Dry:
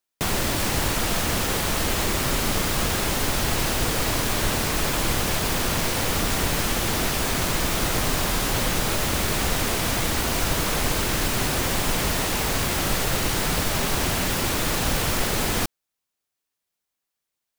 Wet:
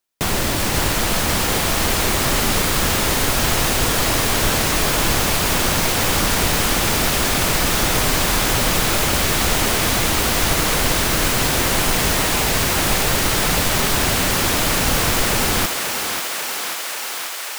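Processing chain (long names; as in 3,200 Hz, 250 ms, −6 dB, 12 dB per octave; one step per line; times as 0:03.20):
feedback echo with a high-pass in the loop 539 ms, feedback 83%, high-pass 390 Hz, level −5.5 dB
level +4 dB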